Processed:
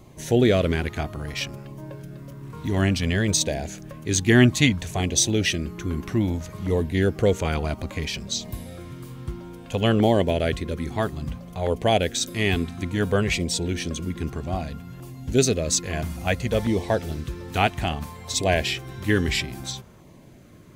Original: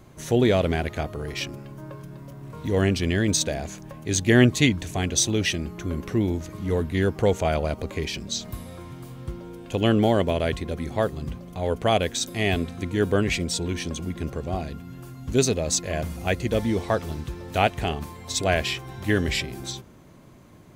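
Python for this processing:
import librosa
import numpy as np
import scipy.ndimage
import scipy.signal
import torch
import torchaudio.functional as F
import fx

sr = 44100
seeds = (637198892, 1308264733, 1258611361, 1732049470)

y = fx.filter_lfo_notch(x, sr, shape='saw_down', hz=0.6, low_hz=260.0, high_hz=1600.0, q=2.5)
y = y * librosa.db_to_amplitude(1.5)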